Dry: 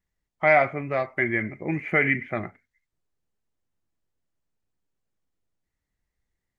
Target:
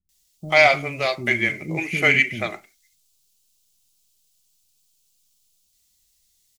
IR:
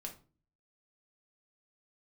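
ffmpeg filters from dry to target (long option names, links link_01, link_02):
-filter_complex "[0:a]asplit=2[link_01][link_02];[1:a]atrim=start_sample=2205,afade=type=out:start_time=0.23:duration=0.01,atrim=end_sample=10584[link_03];[link_02][link_03]afir=irnorm=-1:irlink=0,volume=-10dB[link_04];[link_01][link_04]amix=inputs=2:normalize=0,aexciter=amount=10.7:drive=6.8:freq=2800,acrossover=split=310[link_05][link_06];[link_06]adelay=90[link_07];[link_05][link_07]amix=inputs=2:normalize=0,volume=1dB"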